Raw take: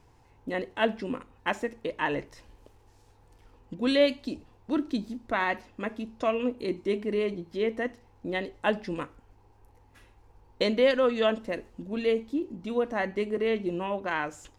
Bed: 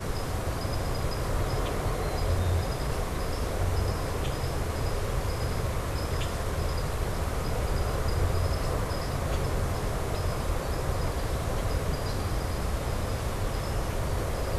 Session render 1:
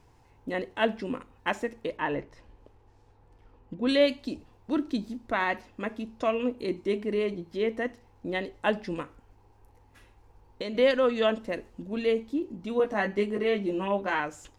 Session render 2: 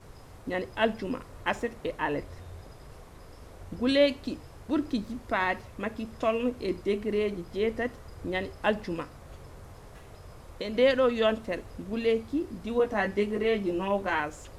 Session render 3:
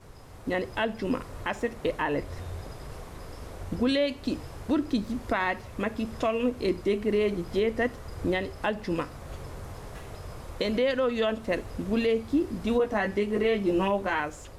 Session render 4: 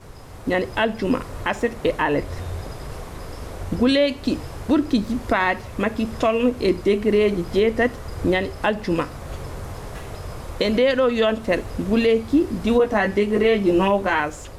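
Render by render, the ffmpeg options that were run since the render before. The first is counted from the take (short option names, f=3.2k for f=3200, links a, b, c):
-filter_complex "[0:a]asettb=1/sr,asplit=3[a][b][c];[a]atrim=end=1.974[d];[b]atrim=start=1.97:end=3.89,asetpts=PTS-STARTPTS,afade=t=in:d=0.004:c=qsin,afade=t=out:st=1.916:d=0.004:c=qsin,lowpass=f=1.9k:p=1[e];[c]atrim=start=3.886[f];[d][e]acrossfade=d=0.004:c1=hsin:c2=qsin[g];[g][f]acrossfade=d=0.004:c1=qsin:c2=hsin,asettb=1/sr,asplit=3[h][i][j];[h]atrim=end=9.014[k];[i]atrim=start=9.01:end=10.75,asetpts=PTS-STARTPTS,afade=t=in:d=0.004:c=qsin,afade=t=out:st=1.736:d=0.004:c=qsin,acompressor=threshold=-34dB:ratio=2.5:attack=3.2:release=140:knee=1:detection=peak[l];[j]atrim=start=10.746[m];[k][l]acrossfade=d=0.004:c1=hsin:c2=qsin[n];[n][m]acrossfade=d=0.004:c1=qsin:c2=hsin,asettb=1/sr,asplit=3[o][p][q];[o]atrim=end=12.784[r];[p]atrim=start=12.78:end=14.2,asetpts=PTS-STARTPTS,afade=t=in:d=0.004:c=qsin,afade=t=out:st=1.416:d=0.004:c=qsin,asplit=2[s][t];[t]adelay=15,volume=-3dB[u];[s][u]amix=inputs=2:normalize=0,atrim=end_sample=62622[v];[q]atrim=start=14.196[w];[r][v]acrossfade=d=0.004:c1=hsin:c2=qsin[x];[x][w]acrossfade=d=0.004:c1=qsin:c2=hsin"
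-filter_complex "[1:a]volume=-18.5dB[a];[0:a][a]amix=inputs=2:normalize=0"
-af "dynaudnorm=f=140:g=7:m=7dB,alimiter=limit=-16.5dB:level=0:latency=1:release=352"
-af "volume=7.5dB"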